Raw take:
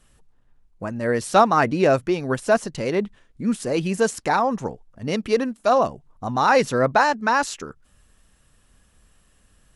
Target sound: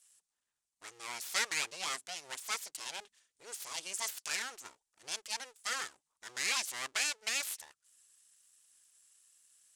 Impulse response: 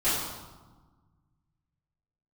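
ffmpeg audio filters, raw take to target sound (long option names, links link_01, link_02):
-af "aeval=exprs='abs(val(0))':channel_layout=same,bandpass=frequency=8000:width_type=q:width=1.6:csg=0,volume=4.5dB"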